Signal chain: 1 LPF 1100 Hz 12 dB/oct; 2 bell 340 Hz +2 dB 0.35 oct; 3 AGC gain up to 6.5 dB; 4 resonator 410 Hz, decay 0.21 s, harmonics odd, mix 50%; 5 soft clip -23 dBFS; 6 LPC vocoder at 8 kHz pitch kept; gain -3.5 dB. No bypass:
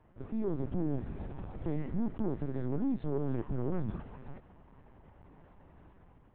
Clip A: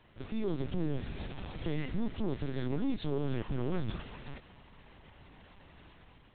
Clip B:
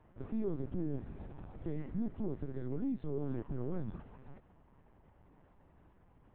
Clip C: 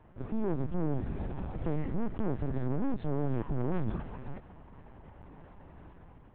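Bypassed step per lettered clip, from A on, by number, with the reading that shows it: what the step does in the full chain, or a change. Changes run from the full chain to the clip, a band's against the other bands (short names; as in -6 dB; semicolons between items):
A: 1, 2 kHz band +8.5 dB; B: 3, loudness change -4.0 LU; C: 4, 250 Hz band -3.5 dB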